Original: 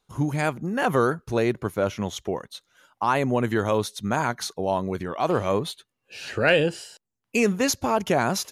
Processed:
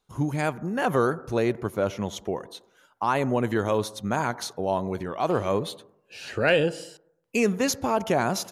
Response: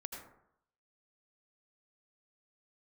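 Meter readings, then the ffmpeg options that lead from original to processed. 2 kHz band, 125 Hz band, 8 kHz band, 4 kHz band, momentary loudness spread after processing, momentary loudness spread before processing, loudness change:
-2.5 dB, -2.0 dB, -2.5 dB, -2.5 dB, 12 LU, 12 LU, -1.5 dB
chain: -filter_complex "[0:a]asplit=2[a][b];[b]lowpass=1.2k[c];[1:a]atrim=start_sample=2205,lowshelf=f=180:g=-10[d];[c][d]afir=irnorm=-1:irlink=0,volume=-9.5dB[e];[a][e]amix=inputs=2:normalize=0,volume=-2.5dB"

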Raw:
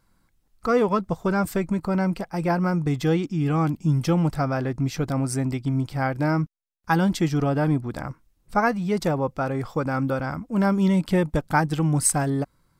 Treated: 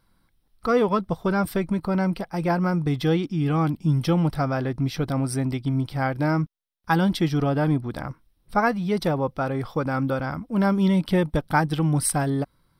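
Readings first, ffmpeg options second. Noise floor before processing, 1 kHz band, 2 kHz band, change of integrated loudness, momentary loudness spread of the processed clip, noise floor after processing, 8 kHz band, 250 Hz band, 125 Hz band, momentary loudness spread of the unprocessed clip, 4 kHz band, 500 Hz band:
-66 dBFS, 0.0 dB, 0.0 dB, 0.0 dB, 6 LU, -66 dBFS, -3.5 dB, 0.0 dB, 0.0 dB, 6 LU, +2.5 dB, 0.0 dB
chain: -af "superequalizer=13b=1.58:15b=0.282"

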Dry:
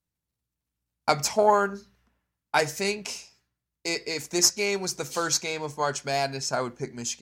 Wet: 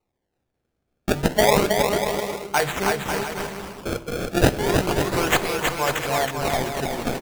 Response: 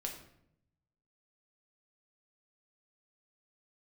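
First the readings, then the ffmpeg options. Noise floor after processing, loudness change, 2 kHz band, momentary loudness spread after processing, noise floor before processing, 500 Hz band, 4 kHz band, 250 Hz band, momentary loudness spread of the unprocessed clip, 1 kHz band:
-78 dBFS, +3.5 dB, +6.0 dB, 10 LU, under -85 dBFS, +5.5 dB, +2.0 dB, +9.0 dB, 12 LU, +3.5 dB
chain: -filter_complex "[0:a]highshelf=f=6.7k:t=q:w=1.5:g=9.5,acrusher=samples=26:mix=1:aa=0.000001:lfo=1:lforange=41.6:lforate=0.31,aecho=1:1:320|544|700.8|810.6|887.4:0.631|0.398|0.251|0.158|0.1,asplit=2[a][b];[1:a]atrim=start_sample=2205[c];[b][c]afir=irnorm=-1:irlink=0,volume=-9dB[d];[a][d]amix=inputs=2:normalize=0"

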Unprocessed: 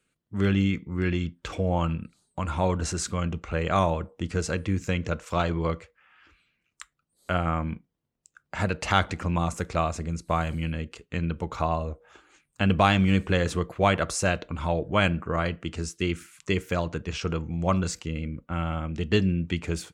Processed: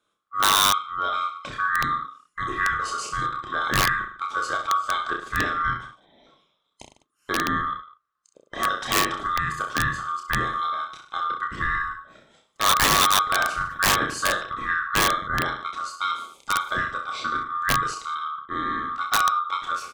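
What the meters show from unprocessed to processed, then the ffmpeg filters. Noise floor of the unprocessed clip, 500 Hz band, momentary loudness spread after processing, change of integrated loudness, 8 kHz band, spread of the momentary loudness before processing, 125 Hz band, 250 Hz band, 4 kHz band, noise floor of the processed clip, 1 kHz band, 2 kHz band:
-78 dBFS, -7.0 dB, 11 LU, +3.5 dB, +9.0 dB, 9 LU, -10.5 dB, -9.0 dB, +9.5 dB, -73 dBFS, +7.5 dB, +8.5 dB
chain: -filter_complex "[0:a]afftfilt=real='real(if(lt(b,960),b+48*(1-2*mod(floor(b/48),2)),b),0)':imag='imag(if(lt(b,960),b+48*(1-2*mod(floor(b/48),2)),b),0)':win_size=2048:overlap=0.75,highshelf=f=7k:g=-10,asplit=2[a][b];[b]aecho=0:1:30|64.5|104.2|149.8|202.3:0.631|0.398|0.251|0.158|0.1[c];[a][c]amix=inputs=2:normalize=0,aeval=exprs='(mod(3.98*val(0)+1,2)-1)/3.98':c=same"

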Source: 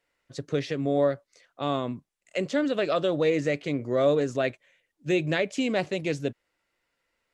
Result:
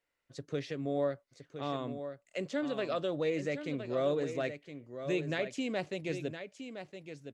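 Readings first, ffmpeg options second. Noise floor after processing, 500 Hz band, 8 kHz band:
-79 dBFS, -8.0 dB, -8.0 dB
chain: -af "aecho=1:1:1015:0.335,volume=-8.5dB"

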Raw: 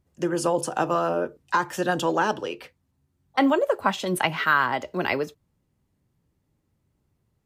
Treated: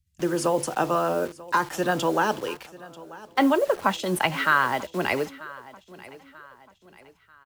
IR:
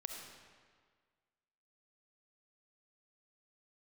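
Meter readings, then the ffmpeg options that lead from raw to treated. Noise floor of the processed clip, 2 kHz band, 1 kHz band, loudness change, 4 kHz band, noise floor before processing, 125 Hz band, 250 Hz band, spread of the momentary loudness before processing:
-63 dBFS, 0.0 dB, 0.0 dB, 0.0 dB, 0.0 dB, -73 dBFS, 0.0 dB, 0.0 dB, 8 LU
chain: -filter_complex "[0:a]acrossover=split=140|2200[a][b][c];[b]acrusher=bits=6:mix=0:aa=0.000001[d];[a][d][c]amix=inputs=3:normalize=0,aecho=1:1:939|1878|2817:0.106|0.0445|0.0187"

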